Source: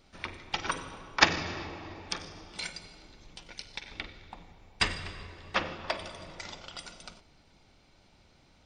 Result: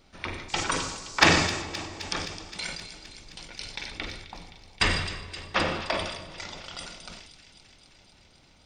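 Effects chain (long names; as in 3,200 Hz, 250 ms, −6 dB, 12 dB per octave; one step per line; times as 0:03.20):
0:00.48–0:01.61: noise in a band 4,100–7,800 Hz −47 dBFS
in parallel at −10.5 dB: wave folding −12 dBFS
on the sum: delay with a high-pass on its return 261 ms, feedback 75%, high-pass 2,900 Hz, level −11 dB
level that may fall only so fast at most 51 dB per second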